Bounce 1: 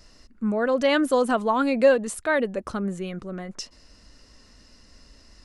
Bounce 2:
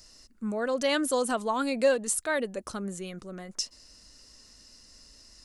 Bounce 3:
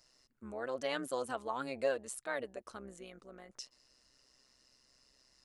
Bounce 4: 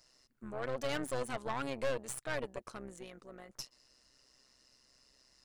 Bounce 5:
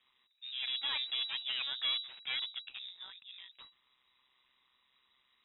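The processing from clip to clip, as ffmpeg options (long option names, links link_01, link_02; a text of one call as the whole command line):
ffmpeg -i in.wav -af "bass=frequency=250:gain=-2,treble=frequency=4000:gain=13,volume=-6dB" out.wav
ffmpeg -i in.wav -af "bass=frequency=250:gain=-11,treble=frequency=4000:gain=-7,tremolo=f=130:d=0.71,volume=-6dB" out.wav
ffmpeg -i in.wav -af "aeval=exprs='(tanh(70.8*val(0)+0.8)-tanh(0.8))/70.8':channel_layout=same,volume=6.5dB" out.wav
ffmpeg -i in.wav -af "lowpass=frequency=3300:width_type=q:width=0.5098,lowpass=frequency=3300:width_type=q:width=0.6013,lowpass=frequency=3300:width_type=q:width=0.9,lowpass=frequency=3300:width_type=q:width=2.563,afreqshift=-3900" out.wav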